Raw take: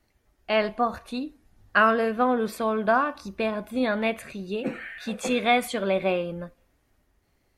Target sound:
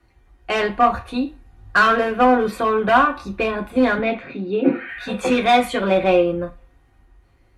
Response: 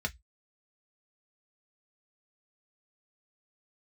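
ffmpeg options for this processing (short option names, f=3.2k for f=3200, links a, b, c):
-filter_complex "[0:a]asoftclip=type=hard:threshold=-19dB,asettb=1/sr,asplit=3[a][b][c];[a]atrim=end=3.984[d];[b]atrim=start=3.98:end=4.89,asetpts=PTS-STARTPTS,afade=t=in:d=0.004:c=qsin,afade=t=out:st=0.906:d=0.004:c=qsin,highpass=160,equalizer=f=280:t=q:w=4:g=9,equalizer=f=1.1k:t=q:w=4:g=-5,equalizer=f=1.8k:t=q:w=4:g=-5,equalizer=f=2.9k:t=q:w=4:g=-6,lowpass=f=3.8k:w=0.5412,lowpass=f=3.8k:w=1.3066[e];[c]atrim=start=4.886[f];[d][e]acrossfade=d=0.004:c1=hsin:c2=qsin[g];[g][f]acrossfade=d=0.004:c1=qsin:c2=hsin[h];[1:a]atrim=start_sample=2205,asetrate=23814,aresample=44100[i];[h][i]afir=irnorm=-1:irlink=0"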